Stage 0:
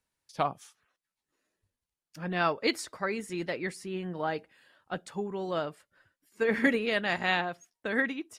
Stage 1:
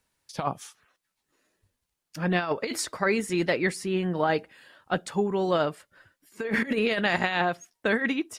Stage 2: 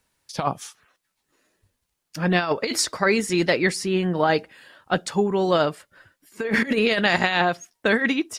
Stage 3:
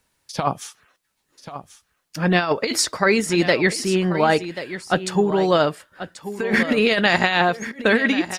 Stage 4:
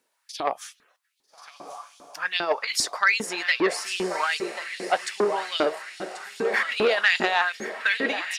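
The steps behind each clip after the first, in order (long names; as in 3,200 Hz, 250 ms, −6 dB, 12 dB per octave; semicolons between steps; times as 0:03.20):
compressor whose output falls as the input rises −30 dBFS, ratio −0.5; level +6.5 dB
dynamic equaliser 5,200 Hz, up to +6 dB, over −47 dBFS, Q 1.3; level +4.5 dB
single-tap delay 1,086 ms −12.5 dB; level +2.5 dB
feedback delay with all-pass diffusion 1,281 ms, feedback 52%, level −11.5 dB; auto-filter high-pass saw up 2.5 Hz 270–3,900 Hz; saturating transformer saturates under 1,200 Hz; level −5.5 dB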